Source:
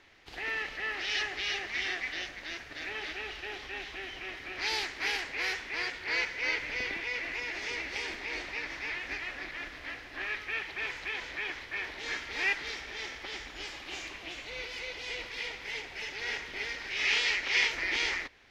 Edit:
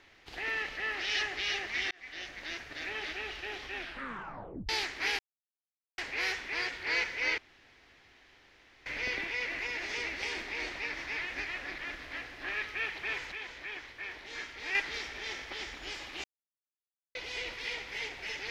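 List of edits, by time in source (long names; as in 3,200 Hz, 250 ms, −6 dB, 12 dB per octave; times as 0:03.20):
0:01.91–0:02.43: fade in
0:03.75: tape stop 0.94 s
0:05.19: splice in silence 0.79 s
0:06.59: splice in room tone 1.48 s
0:11.05–0:12.48: clip gain −5.5 dB
0:13.97–0:14.88: silence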